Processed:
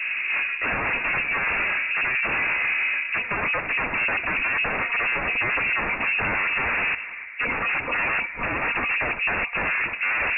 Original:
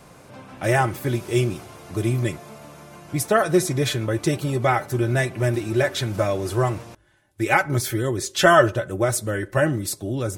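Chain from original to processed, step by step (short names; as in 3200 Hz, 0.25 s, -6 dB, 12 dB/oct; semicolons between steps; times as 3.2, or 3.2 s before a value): spectral gate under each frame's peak -30 dB strong; low-pass opened by the level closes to 720 Hz, open at -16.5 dBFS; reverse; compressor 8:1, threshold -32 dBFS, peak gain reduction 22 dB; reverse; sine folder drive 19 dB, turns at -21 dBFS; on a send: narrowing echo 0.3 s, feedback 78%, band-pass 510 Hz, level -11.5 dB; on the sum: inverted band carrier 2700 Hz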